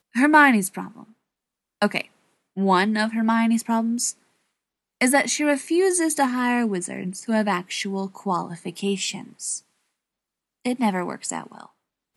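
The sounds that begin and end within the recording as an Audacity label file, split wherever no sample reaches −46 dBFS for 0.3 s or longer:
1.820000	2.070000	sound
2.570000	4.130000	sound
5.010000	9.600000	sound
10.650000	11.670000	sound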